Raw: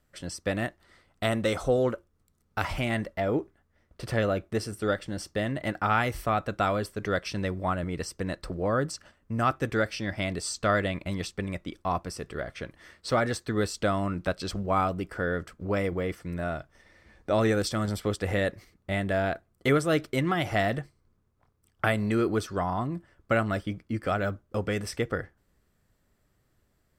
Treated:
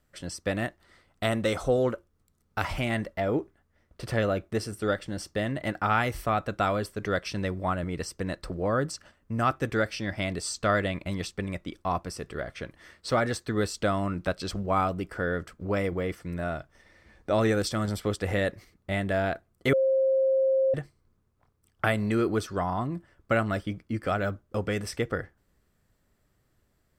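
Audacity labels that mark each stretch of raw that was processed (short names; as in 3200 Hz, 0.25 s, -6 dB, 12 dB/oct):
19.730000	20.740000	bleep 532 Hz -20 dBFS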